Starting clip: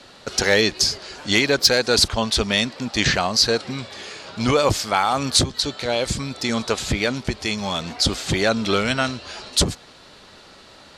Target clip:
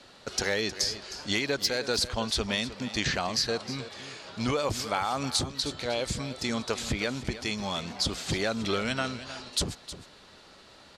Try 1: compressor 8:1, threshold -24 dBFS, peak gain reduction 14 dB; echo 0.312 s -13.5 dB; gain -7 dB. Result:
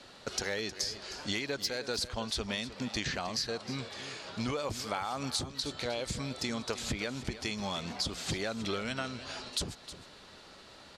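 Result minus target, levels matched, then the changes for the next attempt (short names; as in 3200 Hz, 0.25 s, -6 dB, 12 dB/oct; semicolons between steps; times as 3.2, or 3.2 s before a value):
compressor: peak gain reduction +6.5 dB
change: compressor 8:1, threshold -16.5 dBFS, peak gain reduction 7 dB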